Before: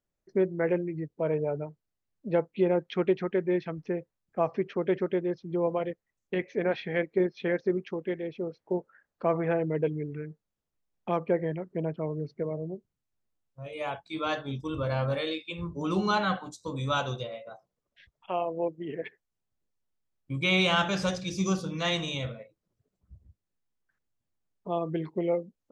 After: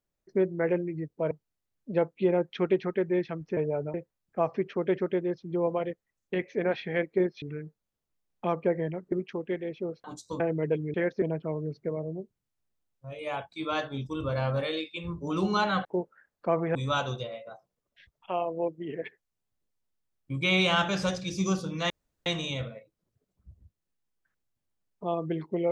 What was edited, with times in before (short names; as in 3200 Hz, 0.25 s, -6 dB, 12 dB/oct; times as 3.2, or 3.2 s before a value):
1.31–1.68 move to 3.94
7.42–7.7 swap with 10.06–11.76
8.62–9.52 swap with 16.39–16.75
21.9 insert room tone 0.36 s